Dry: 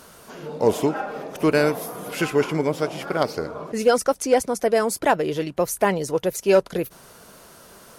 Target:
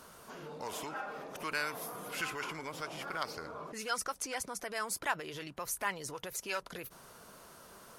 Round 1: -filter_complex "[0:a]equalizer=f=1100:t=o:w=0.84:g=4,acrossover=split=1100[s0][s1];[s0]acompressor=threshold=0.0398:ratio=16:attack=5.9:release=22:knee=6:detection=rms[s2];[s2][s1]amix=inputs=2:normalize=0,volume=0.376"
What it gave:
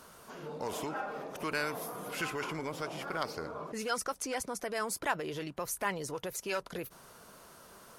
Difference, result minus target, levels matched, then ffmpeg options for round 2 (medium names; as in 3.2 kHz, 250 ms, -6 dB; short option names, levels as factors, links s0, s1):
compression: peak gain reduction -7.5 dB
-filter_complex "[0:a]equalizer=f=1100:t=o:w=0.84:g=4,acrossover=split=1100[s0][s1];[s0]acompressor=threshold=0.0158:ratio=16:attack=5.9:release=22:knee=6:detection=rms[s2];[s2][s1]amix=inputs=2:normalize=0,volume=0.376"